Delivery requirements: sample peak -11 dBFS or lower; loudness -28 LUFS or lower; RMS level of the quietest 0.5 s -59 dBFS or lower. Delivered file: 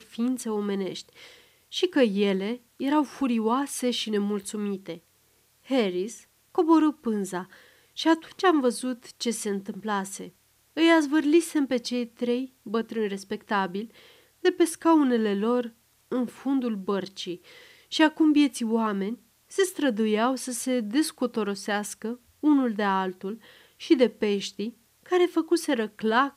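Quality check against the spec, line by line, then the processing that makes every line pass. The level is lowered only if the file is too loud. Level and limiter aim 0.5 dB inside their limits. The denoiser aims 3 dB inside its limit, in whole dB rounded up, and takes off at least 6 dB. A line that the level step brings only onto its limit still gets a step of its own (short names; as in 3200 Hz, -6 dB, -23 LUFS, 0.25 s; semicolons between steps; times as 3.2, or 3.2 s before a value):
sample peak -7.5 dBFS: fail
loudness -26.0 LUFS: fail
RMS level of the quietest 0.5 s -64 dBFS: OK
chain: gain -2.5 dB; limiter -11.5 dBFS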